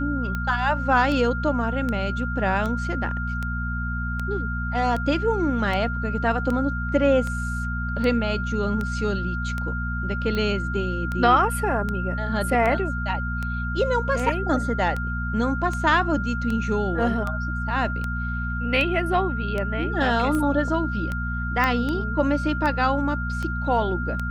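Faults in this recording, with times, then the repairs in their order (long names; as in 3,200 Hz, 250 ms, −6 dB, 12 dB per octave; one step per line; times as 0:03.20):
mains hum 60 Hz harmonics 4 −28 dBFS
scratch tick 78 rpm −16 dBFS
whistle 1,400 Hz −30 dBFS
0:21.64: click −10 dBFS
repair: click removal
notch filter 1,400 Hz, Q 30
hum removal 60 Hz, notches 4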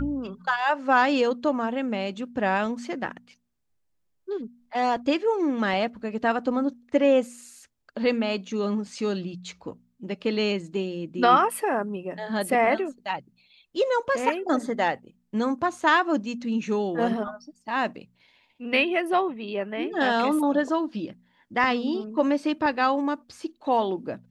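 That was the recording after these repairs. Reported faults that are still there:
none of them is left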